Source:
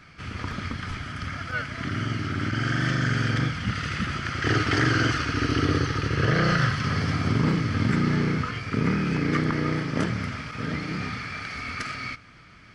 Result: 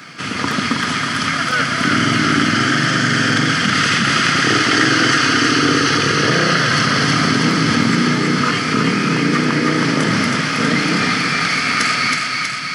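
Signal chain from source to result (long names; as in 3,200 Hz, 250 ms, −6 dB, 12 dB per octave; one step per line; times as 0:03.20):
high-pass filter 150 Hz 24 dB per octave
high-shelf EQ 5,500 Hz +10.5 dB
notch filter 2,300 Hz, Q 22
in parallel at 0 dB: compressor whose output falls as the input rises −30 dBFS, ratio −0.5
on the sum: feedback echo with a high-pass in the loop 321 ms, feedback 70%, high-pass 670 Hz, level −3 dB
on a send at −14.5 dB: convolution reverb RT60 3.5 s, pre-delay 3 ms
on the sum: level +6 dB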